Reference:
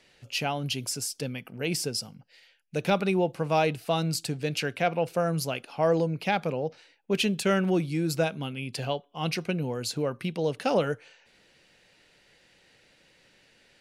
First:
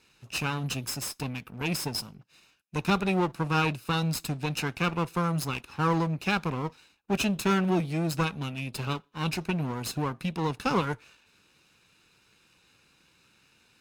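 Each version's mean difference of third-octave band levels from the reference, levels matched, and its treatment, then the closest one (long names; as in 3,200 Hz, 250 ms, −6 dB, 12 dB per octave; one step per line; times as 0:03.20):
5.0 dB: lower of the sound and its delayed copy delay 0.78 ms
high-pass filter 41 Hz
Ogg Vorbis 96 kbit/s 48,000 Hz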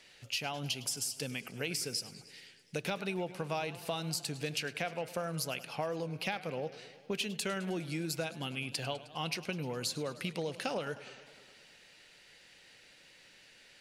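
7.5 dB: tilt shelving filter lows −4 dB, about 1,100 Hz
downward compressor, threshold −33 dBFS, peak gain reduction 12.5 dB
feedback echo with a swinging delay time 103 ms, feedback 71%, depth 151 cents, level −17 dB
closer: first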